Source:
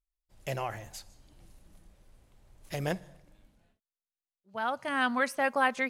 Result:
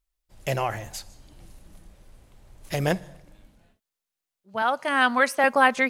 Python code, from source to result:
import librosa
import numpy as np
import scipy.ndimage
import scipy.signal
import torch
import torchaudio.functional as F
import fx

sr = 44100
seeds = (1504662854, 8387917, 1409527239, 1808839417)

y = fx.highpass(x, sr, hz=280.0, slope=12, at=(4.62, 5.44))
y = y * 10.0 ** (8.0 / 20.0)